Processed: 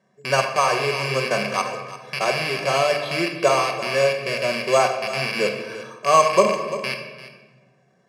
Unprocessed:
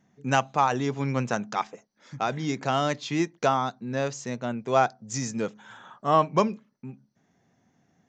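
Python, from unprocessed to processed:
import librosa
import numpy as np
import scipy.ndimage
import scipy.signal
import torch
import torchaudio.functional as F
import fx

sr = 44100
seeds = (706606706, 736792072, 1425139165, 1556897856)

p1 = fx.rattle_buzz(x, sr, strikes_db=-43.0, level_db=-17.0)
p2 = fx.low_shelf(p1, sr, hz=490.0, db=6.0)
p3 = p2 + 0.79 * np.pad(p2, (int(1.8 * sr / 1000.0), 0))[:len(p2)]
p4 = np.repeat(scipy.signal.resample_poly(p3, 1, 6), 6)[:len(p3)]
p5 = p4 + fx.echo_single(p4, sr, ms=344, db=-15.5, dry=0)
p6 = fx.room_shoebox(p5, sr, seeds[0], volume_m3=960.0, walls='mixed', distance_m=1.1)
p7 = fx.rider(p6, sr, range_db=4, speed_s=0.5)
p8 = p6 + F.gain(torch.from_numpy(p7), -2.5).numpy()
p9 = fx.bandpass_edges(p8, sr, low_hz=310.0, high_hz=6600.0)
y = F.gain(torch.from_numpy(p9), -4.0).numpy()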